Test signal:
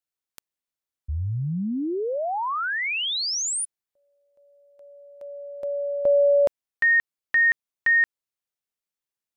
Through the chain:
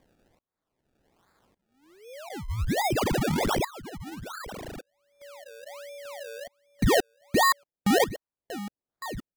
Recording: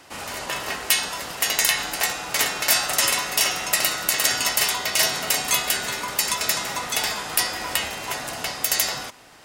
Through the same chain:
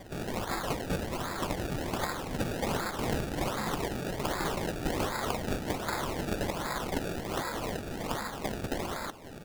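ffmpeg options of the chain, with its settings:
-filter_complex "[0:a]acompressor=threshold=-33dB:ratio=1.5:attack=0.26:release=208:knee=6:detection=peak,alimiter=limit=-21.5dB:level=0:latency=1:release=328,highpass=f=1.2k:w=0.5412,highpass=f=1.2k:w=1.3066,aecho=1:1:3.7:0.34,afftdn=nr=15:nf=-48,asplit=2[a][b];[b]aecho=0:1:1158:0.178[c];[a][c]amix=inputs=2:normalize=0,acompressor=mode=upward:threshold=-37dB:ratio=2.5:attack=0.27:release=496:knee=2.83:detection=peak,acrusher=samples=29:mix=1:aa=0.000001:lfo=1:lforange=29:lforate=1.3,volume=3.5dB"

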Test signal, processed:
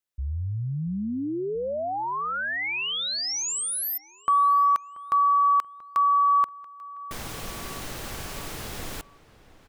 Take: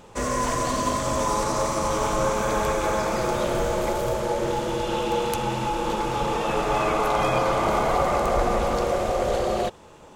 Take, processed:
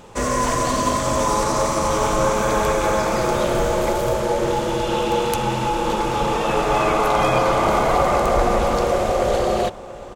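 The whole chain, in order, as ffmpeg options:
-filter_complex "[0:a]asplit=2[a][b];[b]adelay=683,lowpass=f=2.9k:p=1,volume=-18.5dB,asplit=2[c][d];[d]adelay=683,lowpass=f=2.9k:p=1,volume=0.49,asplit=2[e][f];[f]adelay=683,lowpass=f=2.9k:p=1,volume=0.49,asplit=2[g][h];[h]adelay=683,lowpass=f=2.9k:p=1,volume=0.49[i];[a][c][e][g][i]amix=inputs=5:normalize=0,volume=4.5dB"

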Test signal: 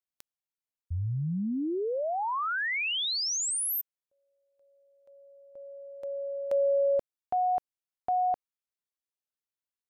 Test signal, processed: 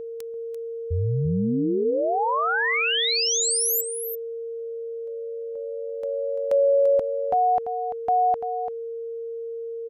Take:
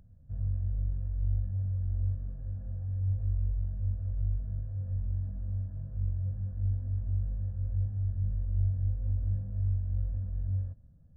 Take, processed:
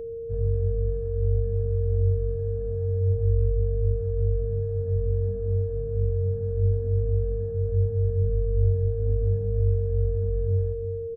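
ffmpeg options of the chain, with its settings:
-filter_complex "[0:a]aeval=exprs='val(0)+0.0126*sin(2*PI*460*n/s)':c=same,asplit=2[a][b];[b]aecho=0:1:341:0.335[c];[a][c]amix=inputs=2:normalize=0,volume=6.5dB"

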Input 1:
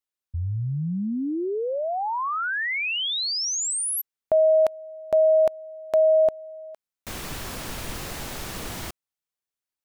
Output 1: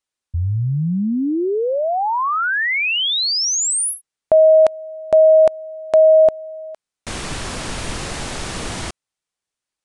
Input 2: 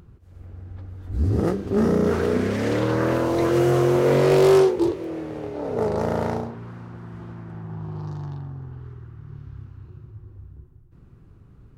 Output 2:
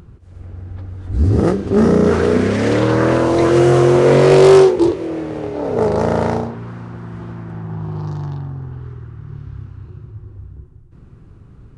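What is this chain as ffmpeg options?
-af "aresample=22050,aresample=44100,volume=7.5dB"

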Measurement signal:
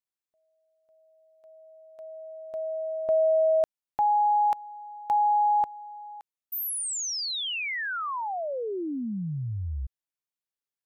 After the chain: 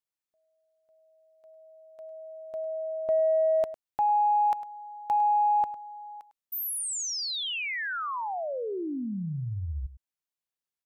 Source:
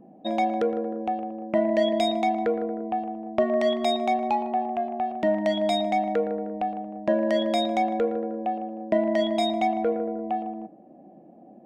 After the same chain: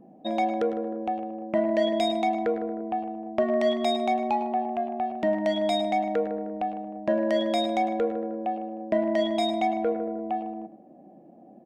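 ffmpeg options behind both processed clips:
-filter_complex "[0:a]acontrast=73,asplit=2[a][b];[b]aecho=0:1:103:0.188[c];[a][c]amix=inputs=2:normalize=0,volume=-8dB"

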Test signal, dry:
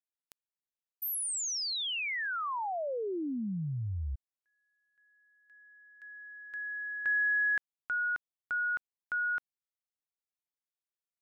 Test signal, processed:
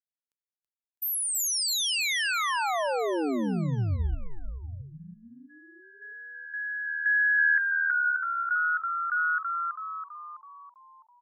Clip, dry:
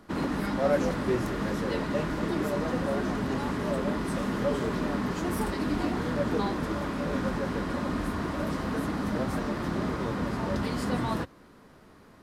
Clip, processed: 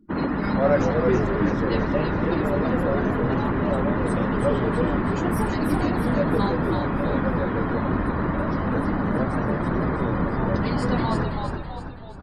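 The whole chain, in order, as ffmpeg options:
-filter_complex "[0:a]afftdn=nr=35:nf=-44,asplit=2[a][b];[b]asplit=7[c][d][e][f][g][h][i];[c]adelay=328,afreqshift=-80,volume=-4dB[j];[d]adelay=656,afreqshift=-160,volume=-9.8dB[k];[e]adelay=984,afreqshift=-240,volume=-15.7dB[l];[f]adelay=1312,afreqshift=-320,volume=-21.5dB[m];[g]adelay=1640,afreqshift=-400,volume=-27.4dB[n];[h]adelay=1968,afreqshift=-480,volume=-33.2dB[o];[i]adelay=2296,afreqshift=-560,volume=-39.1dB[p];[j][k][l][m][n][o][p]amix=inputs=7:normalize=0[q];[a][q]amix=inputs=2:normalize=0,volume=5dB"

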